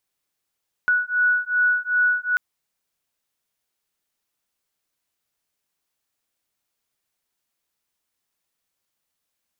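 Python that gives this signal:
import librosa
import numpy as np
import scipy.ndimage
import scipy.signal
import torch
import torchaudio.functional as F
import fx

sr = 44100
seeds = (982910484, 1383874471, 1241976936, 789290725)

y = fx.two_tone_beats(sr, length_s=1.49, hz=1470.0, beat_hz=2.6, level_db=-20.5)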